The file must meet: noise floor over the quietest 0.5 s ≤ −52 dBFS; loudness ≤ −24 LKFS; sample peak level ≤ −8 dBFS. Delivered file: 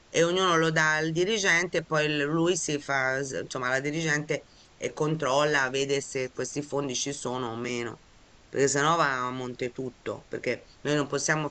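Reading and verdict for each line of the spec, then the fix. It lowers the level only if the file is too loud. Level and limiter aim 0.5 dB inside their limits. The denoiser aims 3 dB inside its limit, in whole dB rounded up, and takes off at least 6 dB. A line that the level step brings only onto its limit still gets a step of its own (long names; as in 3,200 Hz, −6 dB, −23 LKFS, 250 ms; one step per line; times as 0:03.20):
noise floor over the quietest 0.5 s −56 dBFS: in spec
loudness −27.0 LKFS: in spec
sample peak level −11.0 dBFS: in spec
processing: no processing needed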